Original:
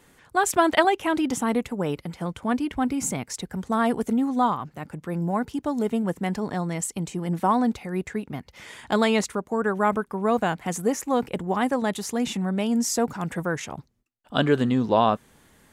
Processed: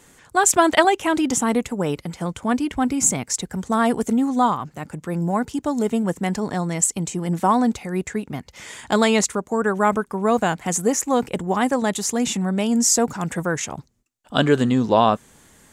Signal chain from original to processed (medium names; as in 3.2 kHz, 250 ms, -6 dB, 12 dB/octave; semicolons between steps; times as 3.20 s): peaking EQ 7.2 kHz +8.5 dB 0.76 oct; trim +3.5 dB